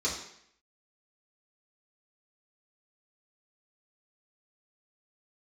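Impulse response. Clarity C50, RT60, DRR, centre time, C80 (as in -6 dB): 5.0 dB, 0.70 s, -8.0 dB, 36 ms, 8.0 dB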